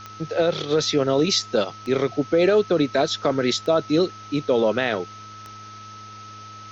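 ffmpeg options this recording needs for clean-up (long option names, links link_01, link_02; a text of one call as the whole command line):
ffmpeg -i in.wav -af "adeclick=threshold=4,bandreject=frequency=104.9:width_type=h:width=4,bandreject=frequency=209.8:width_type=h:width=4,bandreject=frequency=314.7:width_type=h:width=4,bandreject=frequency=419.6:width_type=h:width=4,bandreject=frequency=1300:width=30,afwtdn=0.0063" out.wav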